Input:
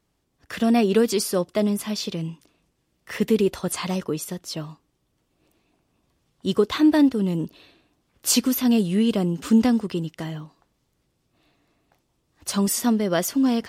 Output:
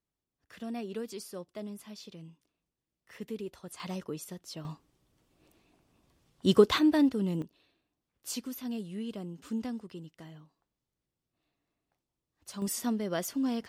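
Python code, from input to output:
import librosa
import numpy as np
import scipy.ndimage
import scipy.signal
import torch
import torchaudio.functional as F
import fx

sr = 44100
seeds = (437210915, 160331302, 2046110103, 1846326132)

y = fx.gain(x, sr, db=fx.steps((0.0, -19.0), (3.8, -11.5), (4.65, -0.5), (6.79, -7.5), (7.42, -17.5), (12.62, -10.5)))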